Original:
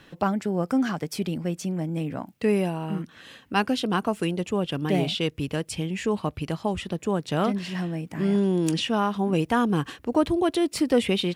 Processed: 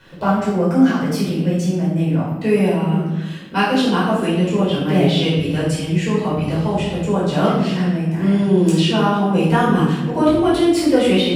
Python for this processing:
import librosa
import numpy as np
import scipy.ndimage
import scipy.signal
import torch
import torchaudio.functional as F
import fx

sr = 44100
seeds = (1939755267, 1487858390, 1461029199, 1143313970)

y = fx.room_shoebox(x, sr, seeds[0], volume_m3=460.0, walls='mixed', distance_m=4.9)
y = y * librosa.db_to_amplitude(-4.0)